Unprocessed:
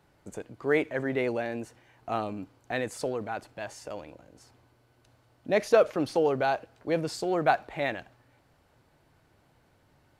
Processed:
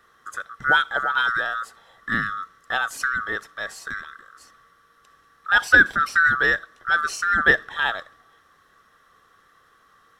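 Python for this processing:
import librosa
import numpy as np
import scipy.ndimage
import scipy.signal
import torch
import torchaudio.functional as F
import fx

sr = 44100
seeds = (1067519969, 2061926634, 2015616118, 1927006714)

y = fx.band_swap(x, sr, width_hz=1000)
y = F.gain(torch.from_numpy(y), 6.5).numpy()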